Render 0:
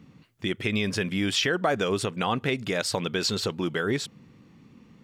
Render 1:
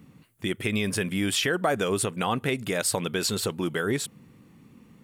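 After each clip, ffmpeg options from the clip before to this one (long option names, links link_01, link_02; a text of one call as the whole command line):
ffmpeg -i in.wav -af "highshelf=frequency=7400:width_type=q:width=1.5:gain=10" out.wav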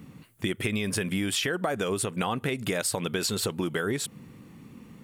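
ffmpeg -i in.wav -af "acompressor=threshold=-30dB:ratio=6,volume=5dB" out.wav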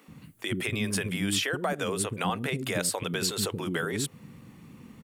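ffmpeg -i in.wav -filter_complex "[0:a]acrossover=split=350[link_01][link_02];[link_01]adelay=80[link_03];[link_03][link_02]amix=inputs=2:normalize=0" out.wav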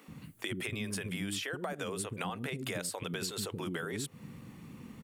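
ffmpeg -i in.wav -af "acompressor=threshold=-34dB:ratio=6" out.wav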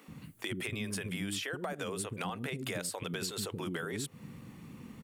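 ffmpeg -i in.wav -af "asoftclip=type=hard:threshold=-26.5dB" out.wav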